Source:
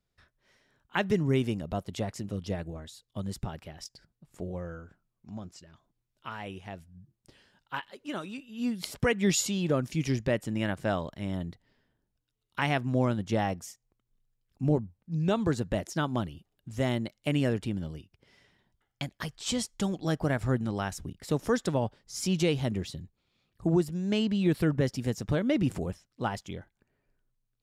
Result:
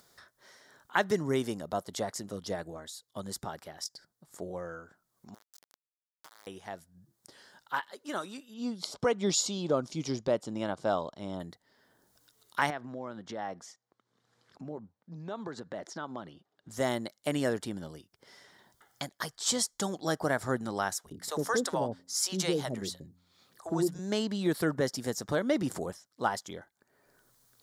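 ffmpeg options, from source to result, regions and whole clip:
-filter_complex "[0:a]asettb=1/sr,asplit=3[a][b][c];[a]atrim=end=5.344[d];[b]atrim=start=5.34:end=6.47,asetpts=PTS-STARTPTS,afade=t=in:d=0.004:c=qsin,afade=t=out:st=1.126:d=0.004:c=qsin,acompressor=threshold=-52dB:ratio=12:attack=3.2:release=140:knee=1:detection=peak,aeval=exprs='val(0)*gte(abs(val(0)),0.00355)':c=same[e];[c]atrim=start=6.466[f];[d][e]acrossfade=d=0.004:c1=hsin:c2=qsin[g];[g][f]acrossfade=d=0.004:c1=qsin:c2=hsin,asettb=1/sr,asplit=3[h][i][j];[h]atrim=end=8.544[k];[i]atrim=start=8.54:end=11.4,asetpts=PTS-STARTPTS,afade=t=in:d=0.004:c=qsin,afade=t=out:st=2.856:d=0.004:c=qsin,lowpass=5.2k,equalizer=f=1.8k:t=o:w=0.5:g=-14[l];[j]atrim=start=11.396[m];[k][l]acrossfade=d=0.004:c1=hsin:c2=qsin[n];[n][m]acrossfade=d=0.004:c1=qsin:c2=hsin,asettb=1/sr,asplit=3[o][p][q];[o]atrim=end=12.704[r];[p]atrim=start=12.7:end=16.69,asetpts=PTS-STARTPTS,afade=t=in:d=0.004:c=qsin,afade=t=out:st=3.986:d=0.004:c=qsin,acompressor=threshold=-32dB:ratio=8:attack=3.2:release=140:knee=1:detection=peak,highpass=120,lowpass=3.6k[s];[q]atrim=start=16.686[t];[r][s]acrossfade=d=0.004:c1=hsin:c2=qsin[u];[u][t]acrossfade=d=0.004:c1=qsin:c2=hsin,asettb=1/sr,asplit=3[v][w][x];[v]atrim=end=20.984[y];[w]atrim=start=20.98:end=23.99,asetpts=PTS-STARTPTS,afade=t=in:d=0.004:c=qsin,afade=t=out:st=3.006:d=0.004:c=qsin,bandreject=f=88.98:t=h:w=4,bandreject=f=177.96:t=h:w=4,bandreject=f=266.94:t=h:w=4,acrossover=split=560[z][aa];[z]adelay=60[ab];[ab][aa]amix=inputs=2:normalize=0,atrim=end_sample=132741[ac];[x]atrim=start=23.986[ad];[y][ac]acrossfade=d=0.004:c1=hsin:c2=qsin[ae];[ae][ad]acrossfade=d=0.004:c1=qsin:c2=hsin,highpass=f=870:p=1,equalizer=f=2.6k:w=2.2:g=-14.5,acompressor=mode=upward:threshold=-55dB:ratio=2.5,volume=7dB"

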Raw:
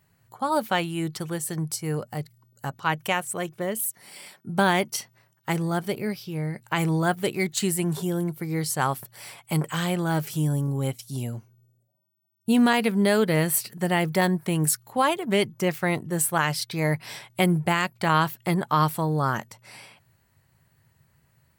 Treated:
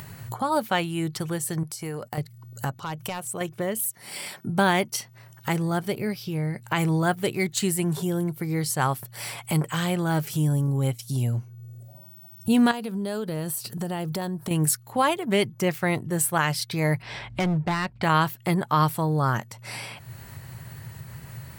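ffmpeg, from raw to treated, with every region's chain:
-filter_complex "[0:a]asettb=1/sr,asplit=3[a][b][c];[a]atrim=end=1.634[d];[b]atrim=start=1.63:end=2.18,asetpts=PTS-STARTPTS,afade=t=in:d=0.004:c=qsin,afade=t=out:st=0.546:d=0.004:c=qsin,agate=range=-17dB:threshold=-48dB:ratio=16:release=100:detection=peak,lowshelf=f=150:g=-11.5,acompressor=threshold=-35dB:ratio=5:attack=3.2:release=140:knee=1:detection=peak[e];[c]atrim=start=2.176[f];[d][e]acrossfade=d=0.004:c1=hsin:c2=qsin[g];[g][f]acrossfade=d=0.004:c1=qsin:c2=hsin,asettb=1/sr,asplit=3[h][i][j];[h]atrim=end=2.794[k];[i]atrim=start=2.79:end=3.41,asetpts=PTS-STARTPTS,afade=t=in:d=0.004:c=qsin,afade=t=out:st=0.616:d=0.004:c=qsin,volume=18dB,asoftclip=hard,volume=-18dB,equalizer=f=1.8k:w=2.5:g=-7,acompressor=threshold=-39dB:ratio=2:attack=3.2:release=140:knee=1:detection=peak[l];[j]atrim=start=3.406[m];[k][l]acrossfade=d=0.004:c1=hsin:c2=qsin[n];[n][m]acrossfade=d=0.004:c1=qsin:c2=hsin,asettb=1/sr,asplit=3[o][p][q];[o]atrim=end=12.714[r];[p]atrim=start=12.71:end=14.51,asetpts=PTS-STARTPTS,afade=t=in:d=0.004:c=qsin,afade=t=out:st=1.796:d=0.004:c=qsin,equalizer=f=2.1k:w=2.4:g=-11,acompressor=threshold=-31dB:ratio=3:attack=3.2:release=140:knee=1:detection=peak[s];[q]atrim=start=14.506[t];[r][s]acrossfade=d=0.004:c1=hsin:c2=qsin[u];[u][t]acrossfade=d=0.004:c1=qsin:c2=hsin,asettb=1/sr,asplit=3[v][w][x];[v]atrim=end=17.024[y];[w]atrim=start=17.02:end=18.03,asetpts=PTS-STARTPTS,afade=t=in:d=0.004:c=qsin,afade=t=out:st=1.006:d=0.004:c=qsin,lowpass=3.5k,aeval=exprs='val(0)+0.00141*(sin(2*PI*50*n/s)+sin(2*PI*2*50*n/s)/2+sin(2*PI*3*50*n/s)/3+sin(2*PI*4*50*n/s)/4+sin(2*PI*5*50*n/s)/5)':c=same,asoftclip=type=hard:threshold=-21.5dB[z];[x]atrim=start=18.026[aa];[y][z]acrossfade=d=0.004:c1=hsin:c2=qsin[ab];[ab][aa]acrossfade=d=0.004:c1=qsin:c2=hsin,acompressor=mode=upward:threshold=-25dB:ratio=2.5,equalizer=f=120:t=o:w=0.32:g=7"

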